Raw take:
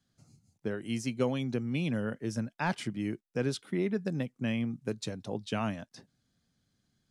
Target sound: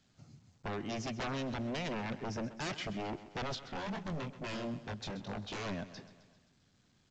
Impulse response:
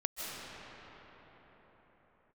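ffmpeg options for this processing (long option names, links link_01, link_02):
-filter_complex "[0:a]lowpass=4600,aeval=exprs='0.0224*(abs(mod(val(0)/0.0224+3,4)-2)-1)':channel_layout=same,asettb=1/sr,asplit=3[link_01][link_02][link_03];[link_01]atrim=end=3.554[link_04];[link_02]atrim=start=3.55:end=5.66,asetpts=PTS-STARTPTS,afade=type=in:duration=0.004:curve=qsin,afade=type=out:start_time=2.106:duration=0.004:curve=qsin,flanger=delay=19:depth=6.7:speed=2.2[link_05];[link_03]atrim=start=5.656[link_06];[link_04][link_05]acrossfade=duration=0.004:curve1=hsin:curve2=qsin[link_07];[link_07][link_06]acrossfade=duration=0.004:curve1=qsin:curve2=hsin,asoftclip=type=tanh:threshold=-36.5dB,aecho=1:1:131|262|393|524|655:0.178|0.0996|0.0558|0.0312|0.0175,volume=3.5dB" -ar 16000 -c:a pcm_alaw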